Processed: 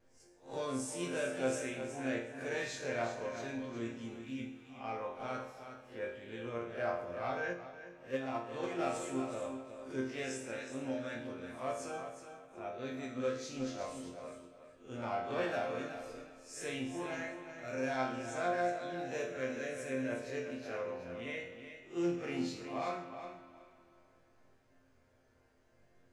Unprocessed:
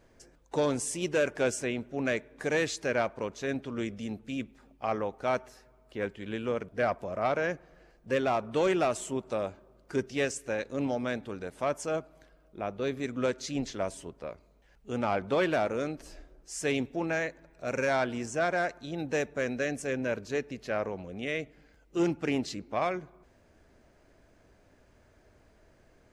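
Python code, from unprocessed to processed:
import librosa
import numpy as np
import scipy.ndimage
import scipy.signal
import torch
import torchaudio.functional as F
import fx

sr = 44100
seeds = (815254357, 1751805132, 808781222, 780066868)

y = fx.spec_swells(x, sr, rise_s=0.34)
y = fx.resonator_bank(y, sr, root=41, chord='sus4', decay_s=0.59)
y = fx.rev_spring(y, sr, rt60_s=3.0, pass_ms=(49,), chirp_ms=25, drr_db=12.5)
y = fx.vibrato(y, sr, rate_hz=0.66, depth_cents=12.0)
y = fx.echo_feedback(y, sr, ms=368, feedback_pct=17, wet_db=-9.5)
y = fx.upward_expand(y, sr, threshold_db=-40.0, expansion=2.5, at=(7.53, 8.79))
y = y * librosa.db_to_amplitude(6.5)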